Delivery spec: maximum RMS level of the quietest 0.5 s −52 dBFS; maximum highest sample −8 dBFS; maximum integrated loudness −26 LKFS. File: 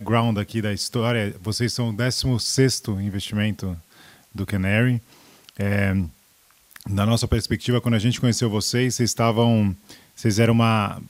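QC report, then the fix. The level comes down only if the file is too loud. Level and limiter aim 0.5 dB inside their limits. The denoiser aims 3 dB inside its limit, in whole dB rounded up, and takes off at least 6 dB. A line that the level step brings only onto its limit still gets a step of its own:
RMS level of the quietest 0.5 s −57 dBFS: in spec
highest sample −4.0 dBFS: out of spec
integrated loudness −22.0 LKFS: out of spec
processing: level −4.5 dB

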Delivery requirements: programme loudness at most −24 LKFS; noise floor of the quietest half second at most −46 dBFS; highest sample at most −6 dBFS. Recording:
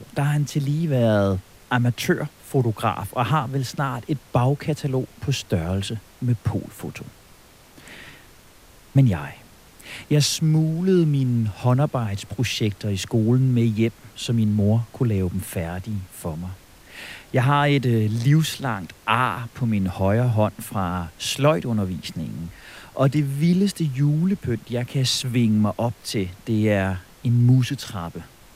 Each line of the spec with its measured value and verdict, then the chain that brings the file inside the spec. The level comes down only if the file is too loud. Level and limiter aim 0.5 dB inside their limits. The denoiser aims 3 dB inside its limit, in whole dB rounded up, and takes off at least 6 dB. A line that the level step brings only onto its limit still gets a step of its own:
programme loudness −22.5 LKFS: out of spec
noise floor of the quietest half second −50 dBFS: in spec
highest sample −5.0 dBFS: out of spec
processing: level −2 dB

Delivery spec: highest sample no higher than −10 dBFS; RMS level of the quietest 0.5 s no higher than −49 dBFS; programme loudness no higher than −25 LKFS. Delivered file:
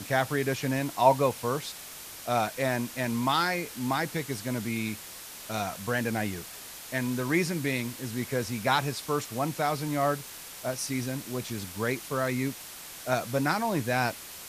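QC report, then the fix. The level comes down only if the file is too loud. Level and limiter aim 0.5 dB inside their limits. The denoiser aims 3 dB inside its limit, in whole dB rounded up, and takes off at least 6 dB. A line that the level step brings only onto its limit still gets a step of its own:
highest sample −7.5 dBFS: out of spec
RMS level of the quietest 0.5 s −44 dBFS: out of spec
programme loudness −29.5 LKFS: in spec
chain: broadband denoise 8 dB, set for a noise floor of −44 dBFS
brickwall limiter −10.5 dBFS

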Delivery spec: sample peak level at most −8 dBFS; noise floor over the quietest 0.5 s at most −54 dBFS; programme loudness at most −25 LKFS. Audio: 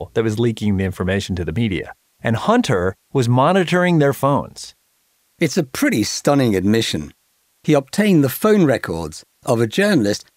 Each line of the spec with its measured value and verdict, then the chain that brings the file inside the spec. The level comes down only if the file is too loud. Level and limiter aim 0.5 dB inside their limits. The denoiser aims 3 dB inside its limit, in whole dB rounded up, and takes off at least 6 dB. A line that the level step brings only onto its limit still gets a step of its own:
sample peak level −2.0 dBFS: out of spec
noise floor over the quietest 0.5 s −63 dBFS: in spec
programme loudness −18.0 LKFS: out of spec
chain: level −7.5 dB

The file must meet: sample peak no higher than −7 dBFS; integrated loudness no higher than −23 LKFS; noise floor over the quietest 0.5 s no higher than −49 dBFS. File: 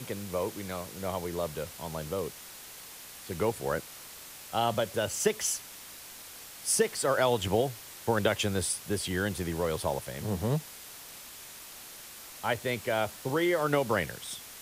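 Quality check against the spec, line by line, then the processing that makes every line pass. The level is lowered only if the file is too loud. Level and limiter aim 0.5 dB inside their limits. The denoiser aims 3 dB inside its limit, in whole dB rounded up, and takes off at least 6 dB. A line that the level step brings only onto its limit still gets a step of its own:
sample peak −12.5 dBFS: in spec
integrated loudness −31.0 LKFS: in spec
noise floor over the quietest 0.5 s −47 dBFS: out of spec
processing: broadband denoise 6 dB, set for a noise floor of −47 dBFS

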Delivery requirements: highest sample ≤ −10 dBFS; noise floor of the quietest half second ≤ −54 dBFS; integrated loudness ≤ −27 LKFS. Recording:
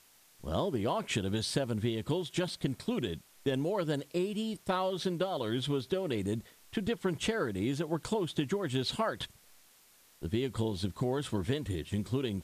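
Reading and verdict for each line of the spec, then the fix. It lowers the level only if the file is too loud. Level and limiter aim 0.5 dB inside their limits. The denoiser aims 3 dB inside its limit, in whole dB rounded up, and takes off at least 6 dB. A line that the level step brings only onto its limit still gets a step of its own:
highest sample −15.5 dBFS: in spec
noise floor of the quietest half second −62 dBFS: in spec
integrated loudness −33.5 LKFS: in spec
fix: no processing needed

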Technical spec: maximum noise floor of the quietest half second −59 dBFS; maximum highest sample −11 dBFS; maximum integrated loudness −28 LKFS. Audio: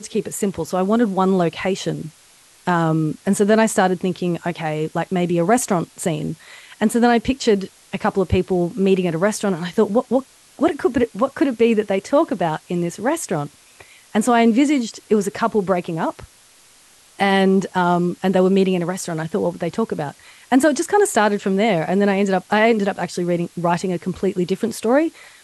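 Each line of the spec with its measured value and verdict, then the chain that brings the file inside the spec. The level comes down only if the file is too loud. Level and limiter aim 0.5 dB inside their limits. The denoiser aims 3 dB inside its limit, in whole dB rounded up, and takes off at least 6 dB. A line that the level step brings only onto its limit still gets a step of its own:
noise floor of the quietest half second −51 dBFS: out of spec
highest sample −5.5 dBFS: out of spec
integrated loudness −19.5 LKFS: out of spec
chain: level −9 dB

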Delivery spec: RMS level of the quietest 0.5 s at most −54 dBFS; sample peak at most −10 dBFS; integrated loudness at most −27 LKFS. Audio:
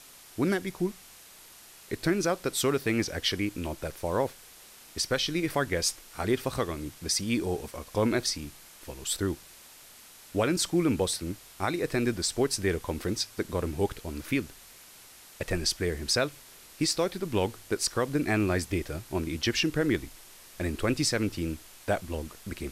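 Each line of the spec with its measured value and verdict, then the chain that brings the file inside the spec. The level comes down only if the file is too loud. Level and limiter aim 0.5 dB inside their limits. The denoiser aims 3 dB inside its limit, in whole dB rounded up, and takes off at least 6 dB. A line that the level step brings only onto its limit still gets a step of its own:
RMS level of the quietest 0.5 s −52 dBFS: out of spec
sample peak −14.5 dBFS: in spec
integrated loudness −29.5 LKFS: in spec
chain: broadband denoise 6 dB, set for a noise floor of −52 dBFS

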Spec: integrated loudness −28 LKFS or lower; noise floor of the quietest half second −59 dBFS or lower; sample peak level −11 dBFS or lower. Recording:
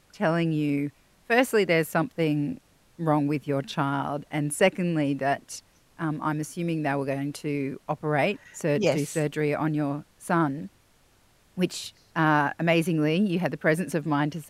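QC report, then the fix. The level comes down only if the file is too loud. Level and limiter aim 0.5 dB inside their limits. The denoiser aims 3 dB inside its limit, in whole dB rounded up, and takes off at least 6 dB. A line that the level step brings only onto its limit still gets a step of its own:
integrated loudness −26.5 LKFS: out of spec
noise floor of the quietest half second −61 dBFS: in spec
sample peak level −8.5 dBFS: out of spec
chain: level −2 dB
brickwall limiter −11.5 dBFS

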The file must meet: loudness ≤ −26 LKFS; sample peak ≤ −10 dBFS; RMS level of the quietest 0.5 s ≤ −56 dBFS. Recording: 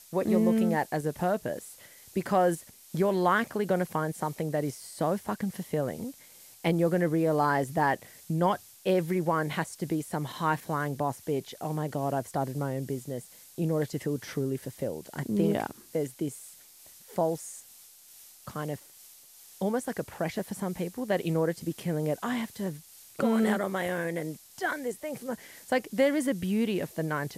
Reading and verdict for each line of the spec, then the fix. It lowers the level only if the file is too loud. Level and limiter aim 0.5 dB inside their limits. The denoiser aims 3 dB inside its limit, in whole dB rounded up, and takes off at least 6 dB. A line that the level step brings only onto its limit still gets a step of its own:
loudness −30.0 LKFS: in spec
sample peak −12.5 dBFS: in spec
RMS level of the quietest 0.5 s −53 dBFS: out of spec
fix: broadband denoise 6 dB, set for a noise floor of −53 dBFS

